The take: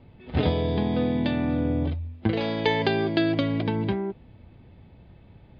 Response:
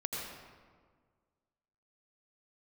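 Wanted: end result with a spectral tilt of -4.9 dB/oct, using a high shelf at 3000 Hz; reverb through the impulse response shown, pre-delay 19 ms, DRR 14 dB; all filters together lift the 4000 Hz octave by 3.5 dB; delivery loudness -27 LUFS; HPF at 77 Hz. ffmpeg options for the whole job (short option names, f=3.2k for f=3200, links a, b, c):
-filter_complex "[0:a]highpass=77,highshelf=f=3k:g=-4.5,equalizer=f=4k:t=o:g=7.5,asplit=2[a][b];[1:a]atrim=start_sample=2205,adelay=19[c];[b][c]afir=irnorm=-1:irlink=0,volume=-17dB[d];[a][d]amix=inputs=2:normalize=0,volume=-1.5dB"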